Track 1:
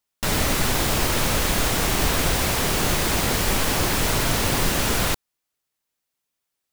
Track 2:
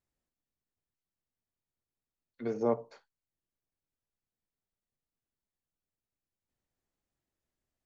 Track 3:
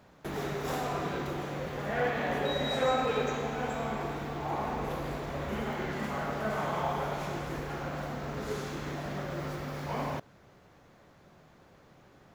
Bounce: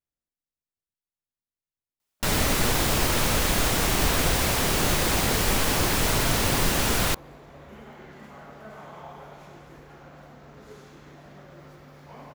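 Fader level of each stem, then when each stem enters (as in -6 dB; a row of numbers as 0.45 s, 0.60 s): -1.5 dB, -7.5 dB, -11.0 dB; 2.00 s, 0.00 s, 2.20 s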